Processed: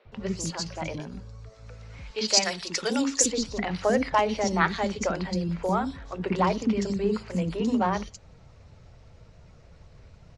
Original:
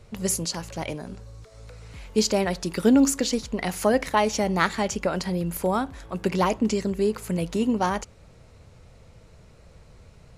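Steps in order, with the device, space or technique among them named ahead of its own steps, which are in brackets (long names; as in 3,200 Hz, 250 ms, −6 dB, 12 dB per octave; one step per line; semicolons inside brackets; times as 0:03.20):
clip after many re-uploads (low-pass filter 6,400 Hz 24 dB per octave; spectral magnitudes quantised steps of 15 dB)
0:02.06–0:03.19: spectral tilt +4 dB per octave
three-band delay without the direct sound mids, lows, highs 50/120 ms, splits 370/3,600 Hz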